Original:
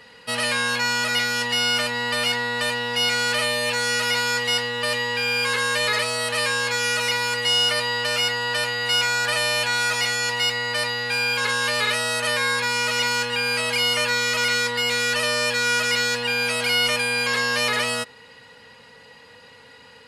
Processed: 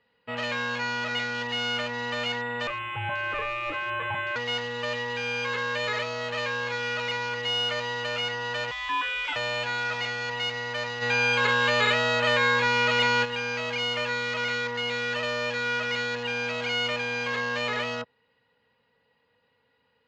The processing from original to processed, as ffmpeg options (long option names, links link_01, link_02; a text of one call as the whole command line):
ffmpeg -i in.wav -filter_complex "[0:a]asettb=1/sr,asplit=3[link_01][link_02][link_03];[link_01]atrim=end=2.674[link_04];[link_02]atrim=start=2.67:end=4.36,asetpts=PTS-STARTPTS,afade=type=in:duration=0.004:curve=qsin,afade=type=out:start_time=1.686:duration=0.004:curve=qsin,lowpass=frequency=2600:width_type=q:width=0.5098,lowpass=frequency=2600:width_type=q:width=0.6013,lowpass=frequency=2600:width_type=q:width=0.9,lowpass=frequency=2600:width_type=q:width=2.563,afreqshift=-3000[link_05];[link_03]atrim=start=4.356[link_06];[link_04][link_05]acrossfade=duration=0.004:curve1=hsin:curve2=qsin[link_07];[link_07][link_06]acrossfade=duration=0.004:curve1=qsin:curve2=hsin,asettb=1/sr,asplit=3[link_08][link_09][link_10];[link_08]atrim=end=8.714[link_11];[link_09]atrim=start=8.71:end=9.36,asetpts=PTS-STARTPTS,afade=type=in:duration=0.004:curve=qsin,afade=type=out:start_time=0.646:duration=0.004:curve=qsin,lowpass=frequency=3300:width_type=q:width=0.5098,lowpass=frequency=3300:width_type=q:width=0.6013,lowpass=frequency=3300:width_type=q:width=0.9,lowpass=frequency=3300:width_type=q:width=2.563,afreqshift=-3900[link_12];[link_10]atrim=start=9.356[link_13];[link_11][link_12]acrossfade=duration=0.004:curve1=hsin:curve2=qsin[link_14];[link_14][link_13]acrossfade=duration=0.004:curve1=qsin:curve2=hsin,asplit=3[link_15][link_16][link_17];[link_15]afade=type=out:start_time=11.01:duration=0.02[link_18];[link_16]acontrast=75,afade=type=in:start_time=11.01:duration=0.02,afade=type=out:start_time=13.24:duration=0.02[link_19];[link_17]afade=type=in:start_time=13.24:duration=0.02[link_20];[link_18][link_19][link_20]amix=inputs=3:normalize=0,lowpass=frequency=3700:width=0.5412,lowpass=frequency=3700:width=1.3066,afwtdn=0.0224,equalizer=frequency=2200:width_type=o:width=1.8:gain=-3.5,volume=-3.5dB" out.wav